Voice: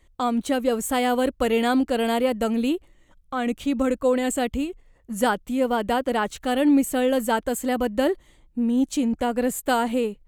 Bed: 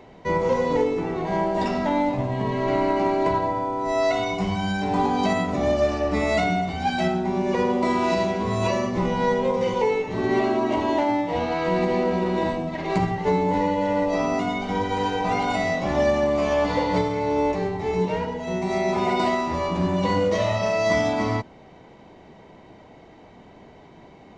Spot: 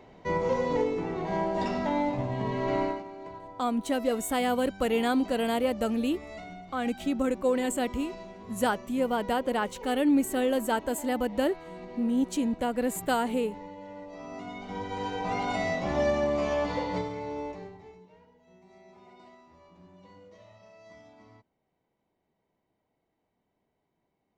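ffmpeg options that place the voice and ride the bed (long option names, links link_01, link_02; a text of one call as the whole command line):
ffmpeg -i stem1.wav -i stem2.wav -filter_complex "[0:a]adelay=3400,volume=-5dB[link_01];[1:a]volume=10dB,afade=type=out:start_time=2.82:duration=0.21:silence=0.16788,afade=type=in:start_time=14.16:duration=1.48:silence=0.16788,afade=type=out:start_time=16.35:duration=1.65:silence=0.0501187[link_02];[link_01][link_02]amix=inputs=2:normalize=0" out.wav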